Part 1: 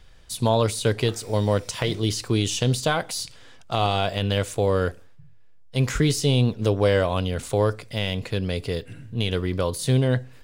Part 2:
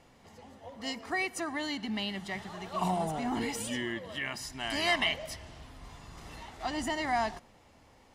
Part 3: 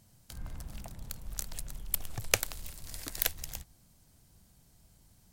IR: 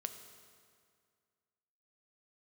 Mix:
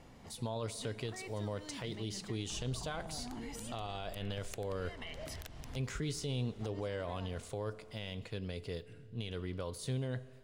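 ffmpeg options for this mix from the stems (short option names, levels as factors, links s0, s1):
-filter_complex "[0:a]agate=range=0.0224:threshold=0.01:ratio=3:detection=peak,equalizer=f=13000:w=2.1:g=-9,volume=0.15,asplit=3[s0][s1][s2];[s1]volume=0.473[s3];[1:a]lowshelf=f=320:g=7.5,acompressor=threshold=0.0282:ratio=6,volume=0.944[s4];[2:a]adynamicsmooth=sensitivity=4.5:basefreq=2000,adelay=2200,volume=0.75[s5];[s2]apad=whole_len=359401[s6];[s4][s6]sidechaincompress=threshold=0.00158:ratio=4:attack=16:release=250[s7];[s7][s5]amix=inputs=2:normalize=0,asoftclip=type=tanh:threshold=0.2,acompressor=threshold=0.00891:ratio=6,volume=1[s8];[3:a]atrim=start_sample=2205[s9];[s3][s9]afir=irnorm=-1:irlink=0[s10];[s0][s8][s10]amix=inputs=3:normalize=0,alimiter=level_in=1.78:limit=0.0631:level=0:latency=1:release=57,volume=0.562"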